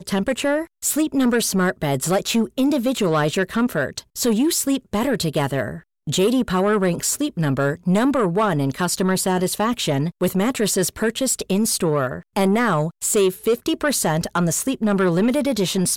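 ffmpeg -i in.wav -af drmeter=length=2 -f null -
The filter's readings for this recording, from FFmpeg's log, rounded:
Channel 1: DR: 5.0
Overall DR: 5.0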